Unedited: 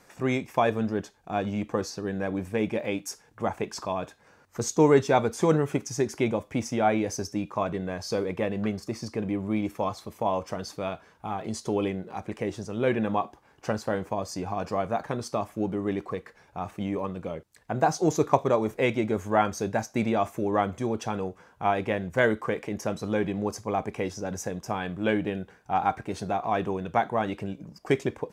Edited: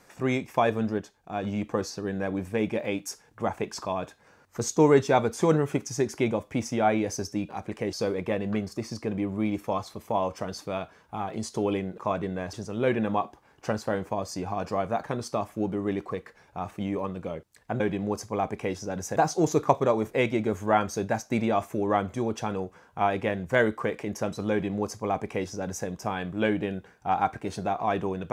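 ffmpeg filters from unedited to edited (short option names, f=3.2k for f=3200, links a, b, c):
-filter_complex "[0:a]asplit=9[a][b][c][d][e][f][g][h][i];[a]atrim=end=0.982[j];[b]atrim=start=0.978:end=1.432,asetpts=PTS-STARTPTS,volume=-3.5dB[k];[c]atrim=start=1.428:end=7.492[l];[d]atrim=start=12.088:end=12.532[m];[e]atrim=start=8.038:end=12.092[n];[f]atrim=start=7.488:end=8.042[o];[g]atrim=start=12.528:end=17.802[p];[h]atrim=start=23.148:end=24.512[q];[i]atrim=start=17.798[r];[j][k]acrossfade=d=0.004:c1=hsin:c2=hsin[s];[s][l]acrossfade=d=0.004:c1=hsin:c2=hsin[t];[t][m]acrossfade=d=0.004:c1=hsin:c2=hsin[u];[u][n]acrossfade=d=0.004:c1=hsin:c2=hsin[v];[v][o]acrossfade=d=0.004:c1=hsin:c2=hsin[w];[w][p]acrossfade=d=0.004:c1=hsin:c2=hsin[x];[x][q]acrossfade=d=0.004:c1=hsin:c2=hsin[y];[y][r]acrossfade=d=0.004:c1=hsin:c2=hsin"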